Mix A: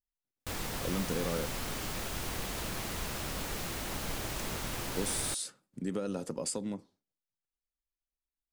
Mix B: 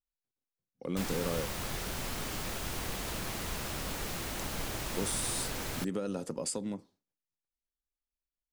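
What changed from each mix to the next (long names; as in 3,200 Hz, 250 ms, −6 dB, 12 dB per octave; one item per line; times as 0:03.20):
background: entry +0.50 s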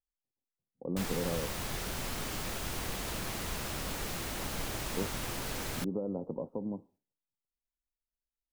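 speech: add Butterworth low-pass 990 Hz 48 dB per octave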